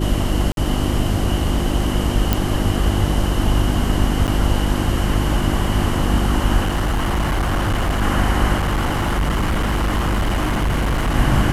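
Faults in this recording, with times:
mains hum 50 Hz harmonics 7 −22 dBFS
0:00.52–0:00.57: drop-out 52 ms
0:02.33: click
0:04.27–0:04.28: drop-out 8.8 ms
0:06.62–0:08.03: clipping −15.5 dBFS
0:08.56–0:11.16: clipping −15.5 dBFS

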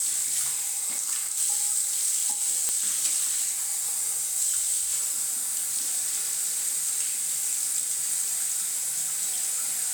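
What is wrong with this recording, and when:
0:02.69: click −8 dBFS

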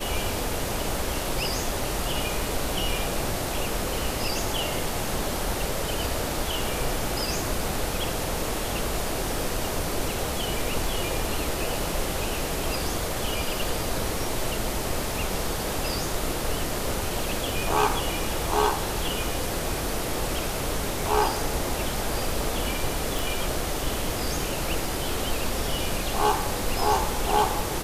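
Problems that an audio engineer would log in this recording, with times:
0:23.19: click

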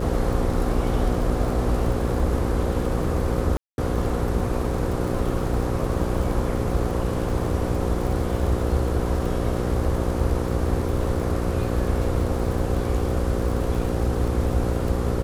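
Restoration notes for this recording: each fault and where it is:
mains buzz 60 Hz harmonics 9 −27 dBFS
surface crackle 70 per second −30 dBFS
0:03.57–0:03.78: drop-out 211 ms

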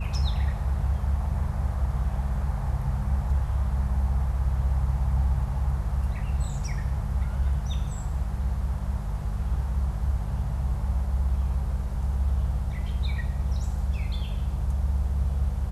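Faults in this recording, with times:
mains hum 50 Hz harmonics 4 −31 dBFS

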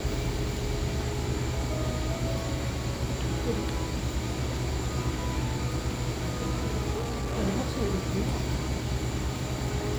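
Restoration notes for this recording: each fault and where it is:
0:06.92–0:07.37: clipping −27.5 dBFS

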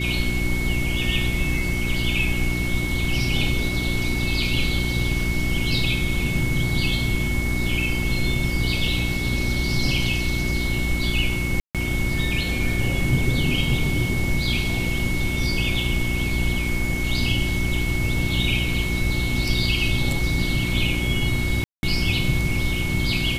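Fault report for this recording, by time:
mains hum 60 Hz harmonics 6 −26 dBFS
whistle 2,200 Hz −28 dBFS
0:11.60–0:11.75: drop-out 147 ms
0:21.64–0:21.83: drop-out 191 ms

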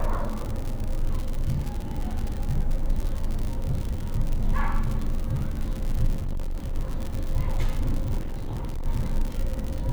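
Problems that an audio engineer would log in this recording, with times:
surface crackle 96 per second −28 dBFS
0:06.22–0:06.75: clipping −24.5 dBFS
0:08.18–0:08.86: clipping −26 dBFS

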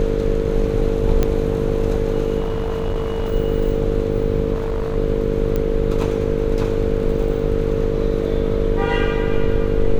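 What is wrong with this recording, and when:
mains buzz 50 Hz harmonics 11 −24 dBFS
whistle 450 Hz −24 dBFS
0:01.23: click −6 dBFS
0:02.39–0:03.33: clipping −17.5 dBFS
0:04.53–0:04.97: clipping −17.5 dBFS
0:05.56: click −10 dBFS

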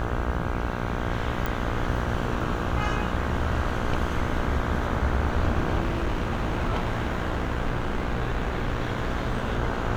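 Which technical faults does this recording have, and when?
mains buzz 60 Hz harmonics 27 −31 dBFS
0:01.46: click
0:05.80–0:09.60: clipping −21 dBFS

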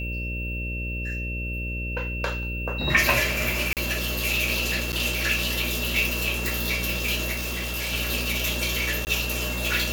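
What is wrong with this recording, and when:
mains buzz 60 Hz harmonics 10 −31 dBFS
whistle 2,700 Hz −32 dBFS
0:03.73–0:03.77: drop-out 38 ms
0:04.92–0:04.93: drop-out 8.9 ms
0:07.32–0:07.93: clipping −26 dBFS
0:09.05–0:09.07: drop-out 19 ms

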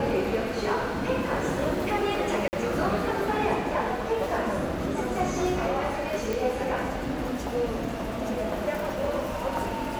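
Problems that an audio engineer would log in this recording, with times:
0:02.48–0:02.53: drop-out 49 ms
0:06.33: click

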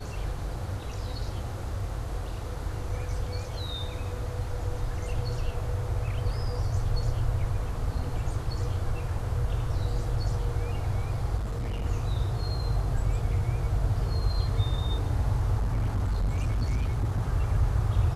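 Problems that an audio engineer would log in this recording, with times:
0:11.37–0:11.86: clipping −27.5 dBFS
0:15.57–0:17.21: clipping −23 dBFS

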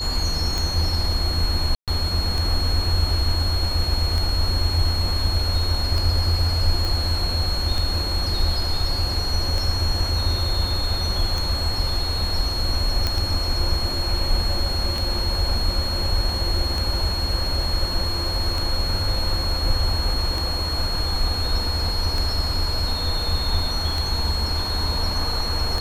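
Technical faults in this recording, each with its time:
scratch tick 33 1/3 rpm
whistle 4,300 Hz −26 dBFS
0:01.75–0:01.88: drop-out 127 ms
0:06.85: click
0:13.07: click −8 dBFS

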